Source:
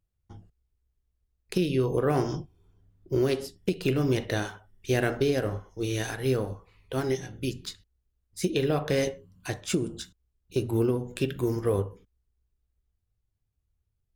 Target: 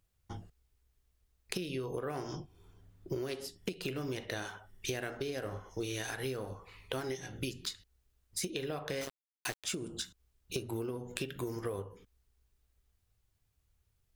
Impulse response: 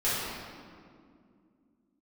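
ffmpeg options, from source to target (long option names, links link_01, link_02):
-filter_complex "[0:a]lowshelf=frequency=470:gain=-8,acompressor=threshold=-44dB:ratio=12,asettb=1/sr,asplit=3[link_01][link_02][link_03];[link_01]atrim=end=9.014[link_04];[link_02]atrim=start=9.01:end=9.64,asetpts=PTS-STARTPTS,afade=type=in:duration=0.004:curve=qsin,afade=type=out:start_time=0.626:duration=0.004:curve=qsin,aeval=exprs='val(0)*gte(abs(val(0)),0.00473)':channel_layout=same[link_05];[link_03]atrim=start=9.636[link_06];[link_04][link_05]acrossfade=duration=0.004:curve1=hsin:curve2=qsin[link_07];[link_07][link_06]acrossfade=duration=0.004:curve1=qsin:curve2=hsin,volume=9.5dB"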